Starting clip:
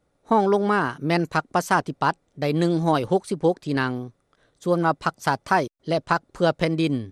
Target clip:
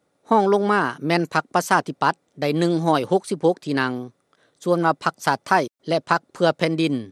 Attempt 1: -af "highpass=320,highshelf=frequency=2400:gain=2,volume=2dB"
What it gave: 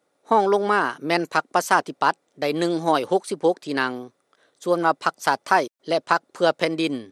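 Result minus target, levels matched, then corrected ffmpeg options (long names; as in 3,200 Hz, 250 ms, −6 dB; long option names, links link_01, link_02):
125 Hz band −8.0 dB
-af "highpass=160,highshelf=frequency=2400:gain=2,volume=2dB"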